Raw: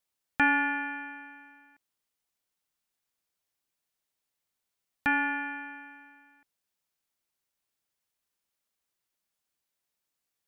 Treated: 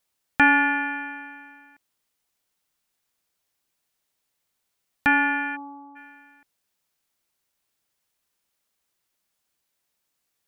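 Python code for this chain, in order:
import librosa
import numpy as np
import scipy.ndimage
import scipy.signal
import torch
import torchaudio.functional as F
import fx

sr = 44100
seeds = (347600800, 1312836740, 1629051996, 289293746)

y = fx.brickwall_bandpass(x, sr, low_hz=170.0, high_hz=1400.0, at=(5.55, 5.95), fade=0.02)
y = y * librosa.db_to_amplitude(7.0)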